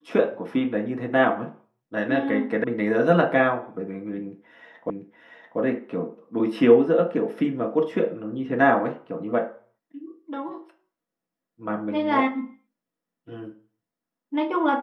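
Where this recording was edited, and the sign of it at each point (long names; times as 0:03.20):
0:02.64: cut off before it has died away
0:04.90: the same again, the last 0.69 s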